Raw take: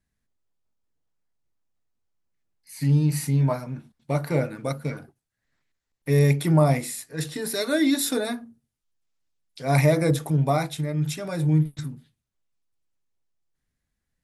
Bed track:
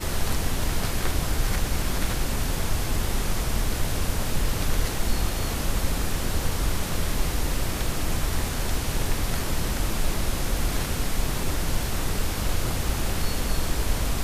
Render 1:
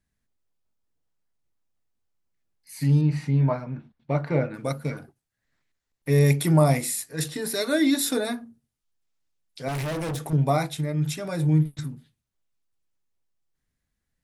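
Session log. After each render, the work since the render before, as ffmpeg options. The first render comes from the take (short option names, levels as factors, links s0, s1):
-filter_complex "[0:a]asettb=1/sr,asplit=3[s0][s1][s2];[s0]atrim=end=3.014[s3];[s1]atrim=start=3.01:end=4.54,asetpts=PTS-STARTPTS,afade=t=in:d=0.004:c=qsin,afade=t=out:st=1.526:d=0.004:c=qsin,lowpass=3000[s4];[s2]atrim=start=4.536[s5];[s3][s4]acrossfade=d=0.004:c1=hsin:c2=qsin[s6];[s6][s5]acrossfade=d=0.004:c1=qsin:c2=hsin,asettb=1/sr,asplit=3[s7][s8][s9];[s7]atrim=end=6.264[s10];[s8]atrim=start=6.26:end=7.28,asetpts=PTS-STARTPTS,afade=t=in:d=0.004:c=qsin,afade=t=out:st=1.016:d=0.004:c=qsin,highshelf=f=5000:g=6.5[s11];[s9]atrim=start=7.276[s12];[s10][s11]acrossfade=d=0.004:c1=hsin:c2=qsin[s13];[s13][s12]acrossfade=d=0.004:c1=qsin:c2=hsin,asettb=1/sr,asplit=3[s14][s15][s16];[s14]atrim=end=9.684[s17];[s15]atrim=start=9.68:end=10.33,asetpts=PTS-STARTPTS,afade=t=in:d=0.004:c=qsin,afade=t=out:st=0.646:d=0.004:c=qsin,volume=23.7,asoftclip=hard,volume=0.0422[s18];[s16]atrim=start=10.326[s19];[s17][s18]acrossfade=d=0.004:c1=hsin:c2=qsin[s20];[s20][s19]acrossfade=d=0.004:c1=qsin:c2=hsin"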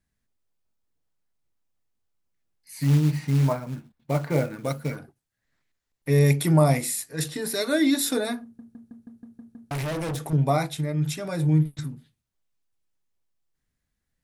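-filter_complex "[0:a]asettb=1/sr,asplit=3[s0][s1][s2];[s0]atrim=end=2.794[s3];[s1]atrim=start=2.79:end=4.96,asetpts=PTS-STARTPTS,afade=t=in:d=0.004:c=qsin,afade=t=out:st=2.166:d=0.004:c=qsin,acrusher=bits=5:mode=log:mix=0:aa=0.000001[s4];[s2]atrim=start=4.956[s5];[s3][s4]acrossfade=d=0.004:c1=hsin:c2=qsin[s6];[s6][s5]acrossfade=d=0.004:c1=qsin:c2=hsin,asplit=9[s7][s8][s9][s10][s11][s12][s13][s14][s15];[s7]atrim=end=8.592[s16];[s8]atrim=start=8.428:end=8.592[s17];[s9]atrim=start=8.428:end=8.592[s18];[s10]atrim=start=8.428:end=8.592[s19];[s11]atrim=start=8.428:end=8.592[s20];[s12]atrim=start=8.428:end=8.592[s21];[s13]atrim=start=8.428:end=8.592[s22];[s14]atrim=start=8.428:end=8.592[s23];[s15]atrim=start=9.708[s24];[s16][s17]acrossfade=d=0.004:c1=hsin:c2=hsin[s25];[s25][s18]acrossfade=d=0.004:c1=hsin:c2=hsin[s26];[s26][s19]acrossfade=d=0.004:c1=hsin:c2=hsin[s27];[s27][s20]acrossfade=d=0.004:c1=hsin:c2=hsin[s28];[s28][s21]acrossfade=d=0.004:c1=hsin:c2=hsin[s29];[s29][s22]acrossfade=d=0.004:c1=hsin:c2=hsin[s30];[s30][s23]acrossfade=d=0.004:c1=hsin:c2=hsin[s31];[s31][s24]acrossfade=d=0.004:c1=hsin:c2=hsin"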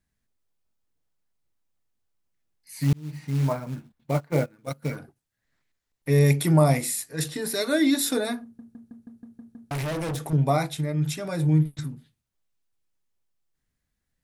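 -filter_complex "[0:a]asplit=3[s0][s1][s2];[s0]afade=t=out:st=4.11:d=0.02[s3];[s1]agate=range=0.112:threshold=0.0501:ratio=16:release=100:detection=peak,afade=t=in:st=4.11:d=0.02,afade=t=out:st=4.82:d=0.02[s4];[s2]afade=t=in:st=4.82:d=0.02[s5];[s3][s4][s5]amix=inputs=3:normalize=0,asplit=2[s6][s7];[s6]atrim=end=2.93,asetpts=PTS-STARTPTS,afade=t=out:st=2.926:d=0.004:c=hsin[s8];[s7]atrim=start=2.93,asetpts=PTS-STARTPTS,afade=t=in:d=0.68[s9];[s8][s9]concat=n=2:v=0:a=1"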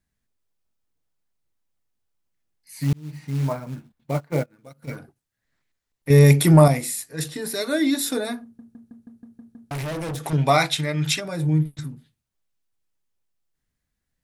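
-filter_complex "[0:a]asplit=3[s0][s1][s2];[s0]afade=t=out:st=4.42:d=0.02[s3];[s1]acompressor=threshold=0.0112:ratio=10:attack=3.2:release=140:knee=1:detection=peak,afade=t=in:st=4.42:d=0.02,afade=t=out:st=4.87:d=0.02[s4];[s2]afade=t=in:st=4.87:d=0.02[s5];[s3][s4][s5]amix=inputs=3:normalize=0,asettb=1/sr,asplit=3[s6][s7][s8];[s6]atrim=end=6.104[s9];[s7]atrim=start=6.1:end=6.68,asetpts=PTS-STARTPTS,afade=t=in:d=0.004:c=qsin,afade=t=out:st=0.576:d=0.004:c=qsin,acontrast=77[s10];[s8]atrim=start=6.676[s11];[s9][s10]acrossfade=d=0.004:c1=hsin:c2=qsin[s12];[s12][s11]acrossfade=d=0.004:c1=qsin:c2=hsin,asplit=3[s13][s14][s15];[s13]afade=t=out:st=10.23:d=0.02[s16];[s14]equalizer=f=3000:w=0.32:g=14,afade=t=in:st=10.23:d=0.02,afade=t=out:st=11.19:d=0.02[s17];[s15]afade=t=in:st=11.19:d=0.02[s18];[s16][s17][s18]amix=inputs=3:normalize=0"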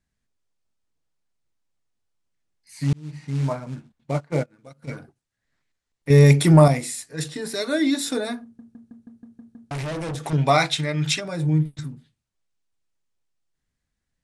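-af "lowpass=f=9300:w=0.5412,lowpass=f=9300:w=1.3066"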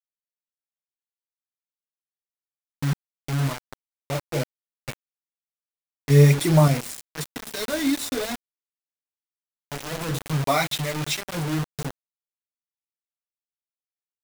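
-af "flanger=delay=0.3:depth=8.7:regen=15:speed=0.59:shape=sinusoidal,acrusher=bits=4:mix=0:aa=0.000001"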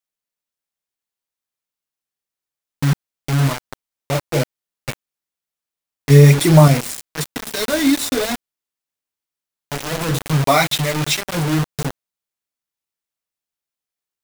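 -af "volume=2.37,alimiter=limit=0.891:level=0:latency=1"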